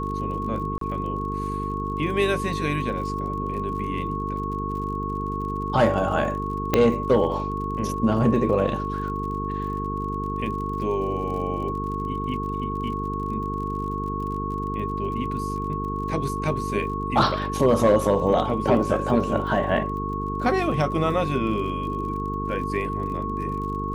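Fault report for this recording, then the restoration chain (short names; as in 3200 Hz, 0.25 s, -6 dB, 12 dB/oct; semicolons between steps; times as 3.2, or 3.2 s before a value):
buzz 50 Hz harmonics 9 -30 dBFS
crackle 46/s -35 dBFS
tone 1100 Hz -29 dBFS
0.78–0.81 gap 33 ms
6.74 pop -5 dBFS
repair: de-click; de-hum 50 Hz, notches 9; notch 1100 Hz, Q 30; interpolate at 0.78, 33 ms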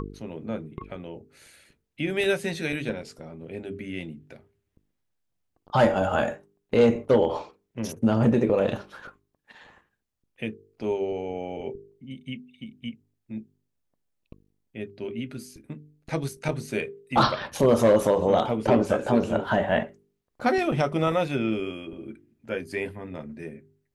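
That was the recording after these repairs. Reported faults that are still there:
6.74 pop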